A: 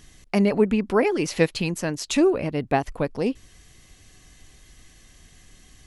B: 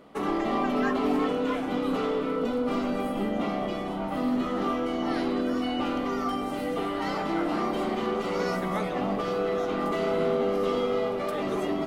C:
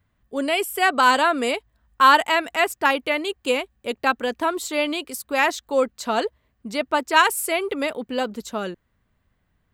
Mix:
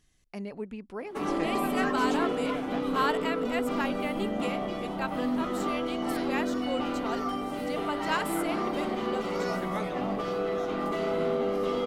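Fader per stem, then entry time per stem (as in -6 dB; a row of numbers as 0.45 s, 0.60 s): -18.0 dB, -2.5 dB, -14.0 dB; 0.00 s, 1.00 s, 0.95 s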